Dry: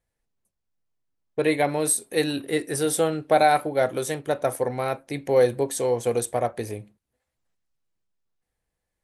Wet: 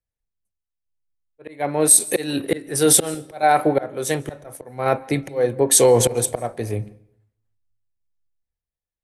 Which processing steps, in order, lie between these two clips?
volume swells 552 ms
sample-and-hold tremolo
on a send at −20 dB: convolution reverb RT60 0.90 s, pre-delay 142 ms
on the sum: boost into a limiter +24 dB
multiband upward and downward expander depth 70%
level −7 dB

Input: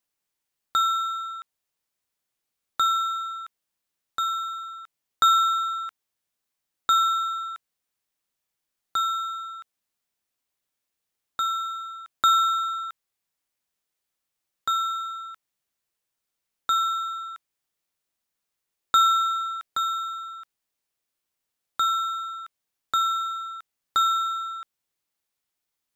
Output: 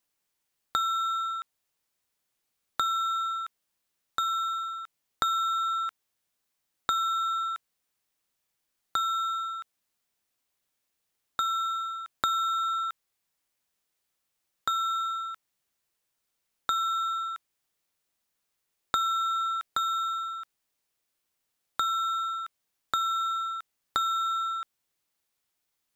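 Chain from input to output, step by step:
downward compressor 6 to 1, threshold −28 dBFS, peak gain reduction 12.5 dB
level +2.5 dB

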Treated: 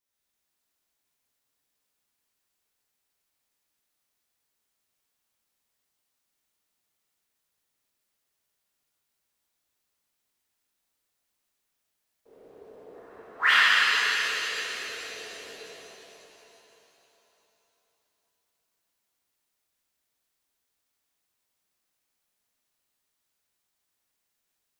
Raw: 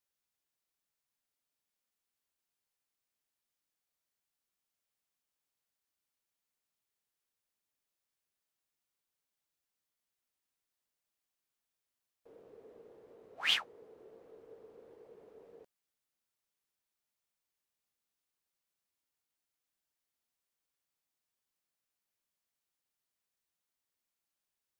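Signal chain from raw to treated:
0:12.94–0:13.59: flat-topped bell 1,400 Hz +14.5 dB 1.2 octaves
reverb with rising layers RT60 3.6 s, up +7 semitones, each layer −8 dB, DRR −10 dB
level −1.5 dB

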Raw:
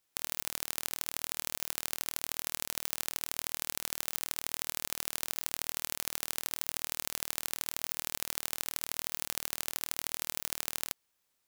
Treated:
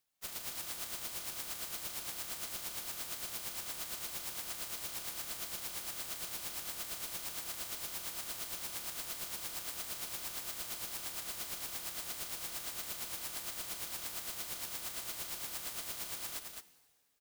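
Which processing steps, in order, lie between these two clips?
coupled-rooms reverb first 0.97 s, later 2.7 s, from −18 dB, DRR 14 dB
time stretch by phase vocoder 1.5×
ring modulation 270 Hz
on a send: single-tap delay 212 ms −4.5 dB

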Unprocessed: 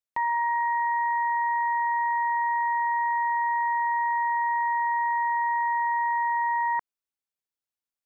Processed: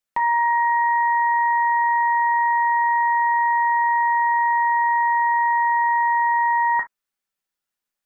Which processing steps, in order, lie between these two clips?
on a send: parametric band 1,600 Hz +12 dB 1.4 octaves + convolution reverb, pre-delay 4 ms, DRR 1 dB
on the sum: level +6 dB

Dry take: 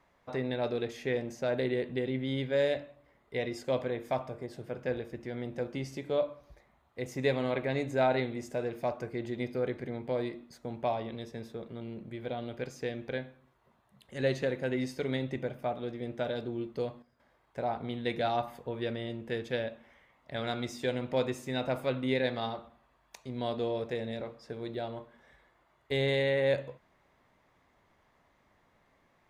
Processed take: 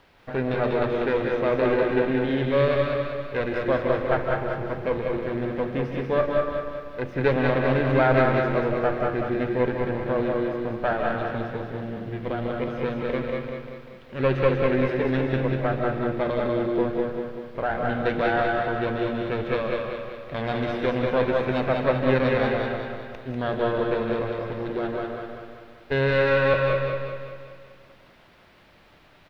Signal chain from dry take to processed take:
lower of the sound and its delayed copy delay 0.33 ms
parametric band 1,600 Hz +8 dB 0.26 octaves
in parallel at −7 dB: bit-depth reduction 8 bits, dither triangular
on the sum: high-frequency loss of the air 370 metres
on a send: repeating echo 194 ms, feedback 52%, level −4 dB
on the sum: comb and all-pass reverb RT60 0.71 s, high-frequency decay 0.8×, pre-delay 120 ms, DRR 4 dB
level +5.5 dB

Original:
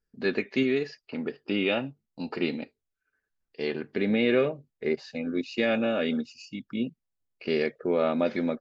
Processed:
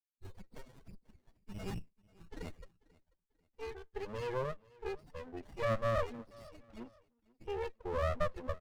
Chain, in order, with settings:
spectral dynamics exaggerated over time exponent 1.5
low-shelf EQ 210 Hz −9.5 dB
downward compressor 6 to 1, threshold −32 dBFS, peak gain reduction 10.5 dB
soft clipping −28.5 dBFS, distortion −18 dB
speech leveller 2 s
high-pass filter sweep 3,900 Hz → 670 Hz, 0:01.34–0:03.89
spectral peaks only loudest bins 8
high-frequency loss of the air 110 metres
repeating echo 490 ms, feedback 34%, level −23.5 dB
windowed peak hold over 33 samples
level +5.5 dB

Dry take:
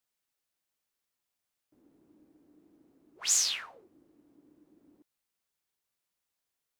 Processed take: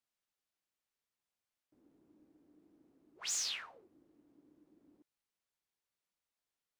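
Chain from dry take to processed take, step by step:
soft clipping −23.5 dBFS, distortion −13 dB
high-shelf EQ 9,500 Hz −9.5 dB
level −4.5 dB

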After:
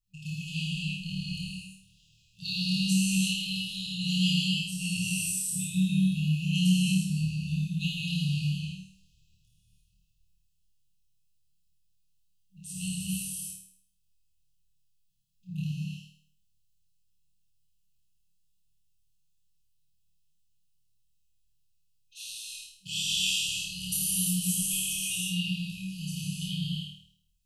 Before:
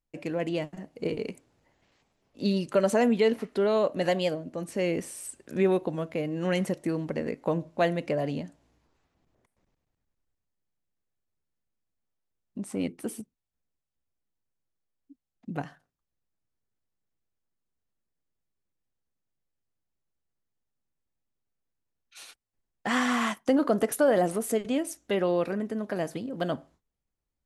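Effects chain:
flutter between parallel walls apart 4.5 metres, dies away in 0.57 s
reverb whose tail is shaped and stops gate 380 ms flat, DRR −7 dB
brick-wall band-stop 190–2,500 Hz

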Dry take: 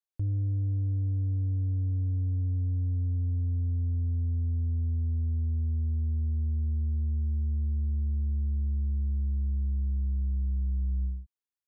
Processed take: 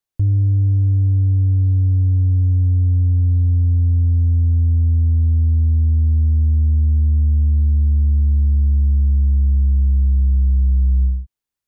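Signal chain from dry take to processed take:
low-shelf EQ 200 Hz +8 dB
level +7 dB

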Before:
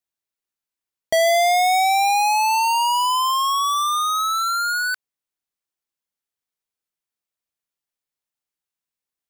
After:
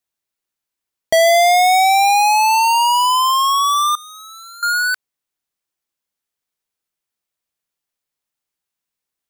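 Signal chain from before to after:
0:03.95–0:04.63: guitar amp tone stack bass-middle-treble 6-0-2
level +5 dB

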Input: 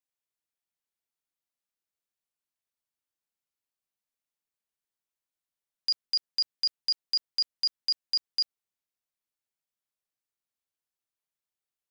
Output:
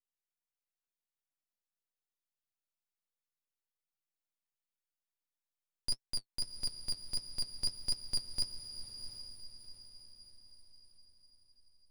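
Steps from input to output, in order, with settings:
0:06.03–0:07.55: high-frequency loss of the air 51 metres
half-wave rectification
flanger 1.5 Hz, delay 6.9 ms, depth 4.9 ms, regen +43%
feedback delay with all-pass diffusion 727 ms, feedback 45%, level −9 dB

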